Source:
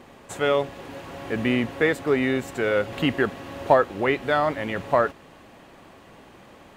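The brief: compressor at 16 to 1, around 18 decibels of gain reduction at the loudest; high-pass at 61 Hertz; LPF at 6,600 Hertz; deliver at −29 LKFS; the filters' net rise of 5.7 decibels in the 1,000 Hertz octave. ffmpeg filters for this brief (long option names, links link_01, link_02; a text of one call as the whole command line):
ffmpeg -i in.wav -af "highpass=61,lowpass=6600,equalizer=frequency=1000:width_type=o:gain=7.5,acompressor=threshold=-25dB:ratio=16,volume=2.5dB" out.wav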